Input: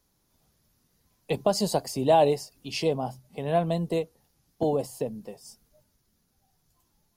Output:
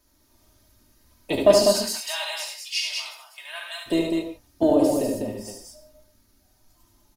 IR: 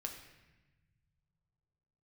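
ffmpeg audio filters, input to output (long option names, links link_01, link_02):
-filter_complex "[0:a]asplit=3[link_01][link_02][link_03];[link_01]afade=type=out:start_time=1.62:duration=0.02[link_04];[link_02]highpass=frequency=1400:width=0.5412,highpass=frequency=1400:width=1.3066,afade=type=in:start_time=1.62:duration=0.02,afade=type=out:start_time=3.86:duration=0.02[link_05];[link_03]afade=type=in:start_time=3.86:duration=0.02[link_06];[link_04][link_05][link_06]amix=inputs=3:normalize=0,acontrast=71,aecho=1:1:3.2:0.75,aecho=1:1:72.89|198.3:0.631|0.631[link_07];[1:a]atrim=start_sample=2205,afade=type=out:start_time=0.22:duration=0.01,atrim=end_sample=10143[link_08];[link_07][link_08]afir=irnorm=-1:irlink=0"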